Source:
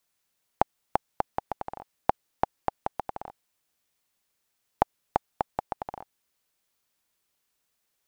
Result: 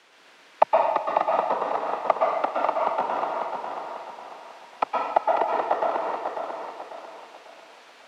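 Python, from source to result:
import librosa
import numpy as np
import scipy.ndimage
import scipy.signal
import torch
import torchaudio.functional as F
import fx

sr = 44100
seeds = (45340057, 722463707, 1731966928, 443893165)

p1 = fx.leveller(x, sr, passes=2)
p2 = fx.noise_vocoder(p1, sr, seeds[0], bands=12)
p3 = fx.quant_dither(p2, sr, seeds[1], bits=8, dither='triangular')
p4 = fx.bandpass_edges(p3, sr, low_hz=340.0, high_hz=2800.0)
p5 = p4 + fx.echo_feedback(p4, sr, ms=545, feedback_pct=38, wet_db=-5.5, dry=0)
y = fx.rev_plate(p5, sr, seeds[2], rt60_s=1.1, hf_ratio=0.95, predelay_ms=105, drr_db=-2.5)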